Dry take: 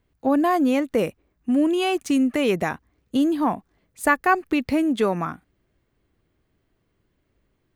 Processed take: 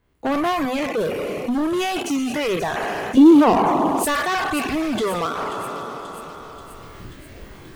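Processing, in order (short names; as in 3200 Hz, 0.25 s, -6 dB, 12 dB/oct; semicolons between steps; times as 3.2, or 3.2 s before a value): spectral trails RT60 2.06 s; recorder AGC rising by 18 dB/s; bell 1100 Hz +4 dB 1.4 oct; notches 50/100/150/200/250 Hz; hard clip -17.5 dBFS, distortion -8 dB; reverb removal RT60 1.4 s; 3.17–4.05 bell 370 Hz +13 dB 2.2 oct; thin delay 0.534 s, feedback 65%, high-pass 3900 Hz, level -9.5 dB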